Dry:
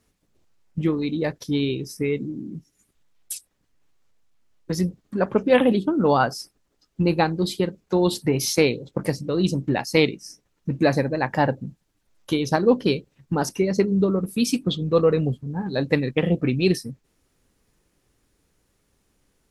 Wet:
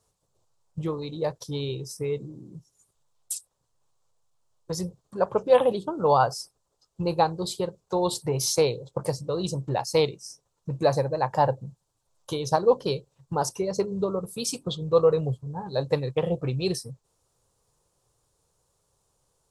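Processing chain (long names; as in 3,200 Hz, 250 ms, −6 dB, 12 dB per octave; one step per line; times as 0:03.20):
graphic EQ with 10 bands 125 Hz +9 dB, 250 Hz −11 dB, 500 Hz +8 dB, 1,000 Hz +11 dB, 2,000 Hz −9 dB, 4,000 Hz +4 dB, 8,000 Hz +11 dB
level −8.5 dB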